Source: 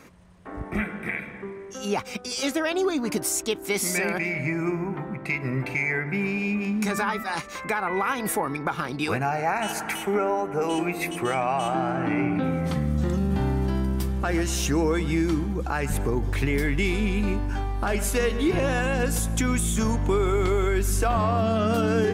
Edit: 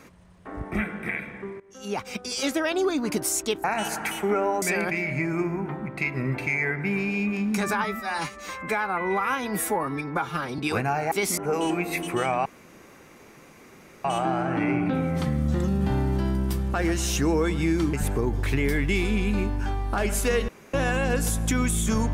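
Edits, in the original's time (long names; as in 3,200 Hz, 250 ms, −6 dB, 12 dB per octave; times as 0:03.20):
0:01.60–0:02.16: fade in, from −19 dB
0:03.64–0:03.90: swap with 0:09.48–0:10.46
0:07.12–0:08.95: time-stretch 1.5×
0:11.54: splice in room tone 1.59 s
0:15.43–0:15.83: remove
0:18.38–0:18.63: fill with room tone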